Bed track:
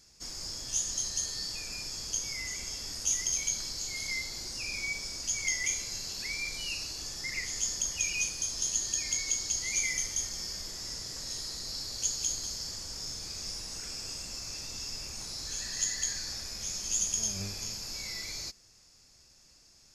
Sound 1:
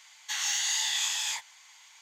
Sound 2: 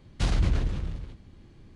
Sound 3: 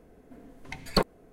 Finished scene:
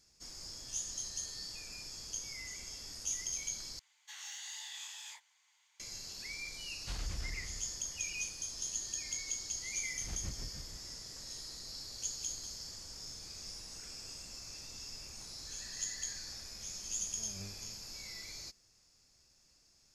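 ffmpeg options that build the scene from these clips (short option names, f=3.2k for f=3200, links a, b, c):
-filter_complex "[2:a]asplit=2[a][b];[0:a]volume=-8dB[c];[1:a]highpass=f=220:p=1[d];[a]equalizer=f=190:w=0.31:g=-10[e];[b]tremolo=f=6.4:d=0.81[f];[c]asplit=2[g][h];[g]atrim=end=3.794[i];[d]atrim=end=2.01,asetpts=PTS-STARTPTS,volume=-17dB[j];[h]atrim=start=5.796[k];[e]atrim=end=1.75,asetpts=PTS-STARTPTS,volume=-11.5dB,afade=t=in:d=0.004:c=hsin,afade=t=out:st=1.746:d=0.004:c=hsin,adelay=6670[l];[f]atrim=end=1.75,asetpts=PTS-STARTPTS,volume=-16dB,afade=t=in:d=0.004:c=hsin,afade=t=out:st=1.746:d=0.004:c=hsin,adelay=9810[m];[i][j]acrossfade=d=0.004:c1=hsin:c2=hsin[n];[n][k]acrossfade=d=0.004:c1=hsin:c2=hsin[o];[o][l][m]amix=inputs=3:normalize=0"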